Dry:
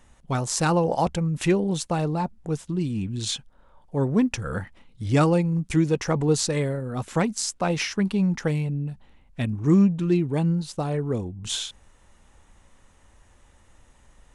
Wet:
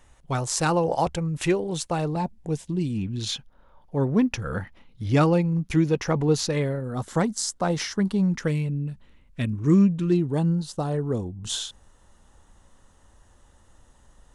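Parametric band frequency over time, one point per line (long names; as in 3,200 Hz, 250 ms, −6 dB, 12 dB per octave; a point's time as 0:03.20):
parametric band −11.5 dB 0.36 octaves
210 Hz
from 0:02.16 1,300 Hz
from 0:02.98 8,200 Hz
from 0:06.84 2,500 Hz
from 0:08.28 780 Hz
from 0:10.12 2,300 Hz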